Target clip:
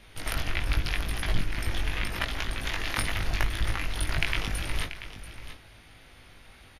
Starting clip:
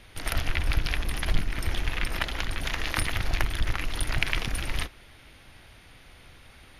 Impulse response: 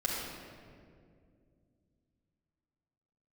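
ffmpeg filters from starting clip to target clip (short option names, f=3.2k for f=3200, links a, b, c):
-af "flanger=delay=18.5:depth=2.1:speed=0.83,aecho=1:1:685:0.237,volume=2dB"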